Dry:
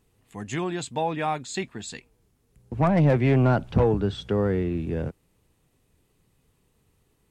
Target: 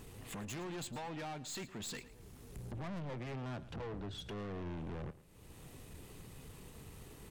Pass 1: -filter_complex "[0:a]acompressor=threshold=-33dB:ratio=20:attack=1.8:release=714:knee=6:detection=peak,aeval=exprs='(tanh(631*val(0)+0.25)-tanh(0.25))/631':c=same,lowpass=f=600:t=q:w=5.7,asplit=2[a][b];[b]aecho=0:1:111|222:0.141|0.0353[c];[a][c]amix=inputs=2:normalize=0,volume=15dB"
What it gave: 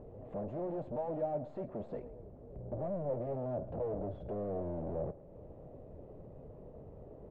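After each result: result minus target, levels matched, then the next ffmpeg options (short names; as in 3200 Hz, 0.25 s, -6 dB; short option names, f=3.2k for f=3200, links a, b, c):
compressor: peak gain reduction -9 dB; 500 Hz band +5.0 dB
-filter_complex "[0:a]acompressor=threshold=-42.5dB:ratio=20:attack=1.8:release=714:knee=6:detection=peak,aeval=exprs='(tanh(631*val(0)+0.25)-tanh(0.25))/631':c=same,lowpass=f=600:t=q:w=5.7,asplit=2[a][b];[b]aecho=0:1:111|222:0.141|0.0353[c];[a][c]amix=inputs=2:normalize=0,volume=15dB"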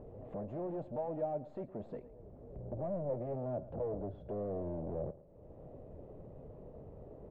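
500 Hz band +4.5 dB
-filter_complex "[0:a]acompressor=threshold=-42.5dB:ratio=20:attack=1.8:release=714:knee=6:detection=peak,aeval=exprs='(tanh(631*val(0)+0.25)-tanh(0.25))/631':c=same,asplit=2[a][b];[b]aecho=0:1:111|222:0.141|0.0353[c];[a][c]amix=inputs=2:normalize=0,volume=15dB"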